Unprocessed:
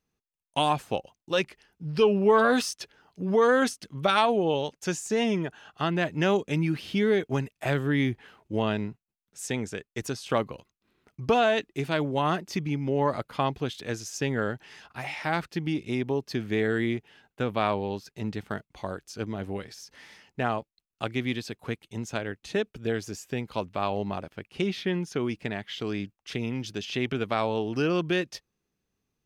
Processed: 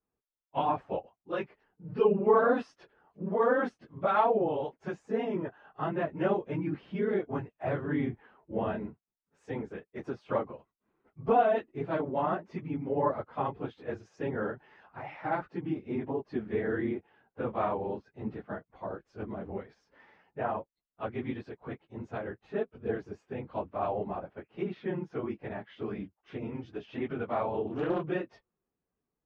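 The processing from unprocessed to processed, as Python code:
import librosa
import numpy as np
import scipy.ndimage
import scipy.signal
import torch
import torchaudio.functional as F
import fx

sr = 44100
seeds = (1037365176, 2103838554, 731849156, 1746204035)

y = fx.phase_scramble(x, sr, seeds[0], window_ms=50)
y = scipy.signal.sosfilt(scipy.signal.butter(2, 1100.0, 'lowpass', fs=sr, output='sos'), y)
y = fx.low_shelf(y, sr, hz=320.0, db=-9.5)
y = fx.doppler_dist(y, sr, depth_ms=0.3, at=(27.67, 28.09))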